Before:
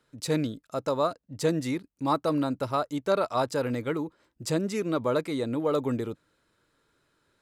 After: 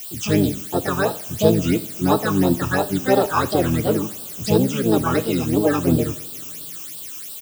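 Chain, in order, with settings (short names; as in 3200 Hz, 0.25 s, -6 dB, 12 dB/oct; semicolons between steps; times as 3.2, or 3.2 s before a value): LPF 6500 Hz 24 dB/oct; harmoniser -7 st -4 dB, +5 st -2 dB; added noise blue -39 dBFS; phaser stages 8, 2.9 Hz, lowest notch 540–2100 Hz; on a send: reverb, pre-delay 3 ms, DRR 11.5 dB; on the sum: gain +7.5 dB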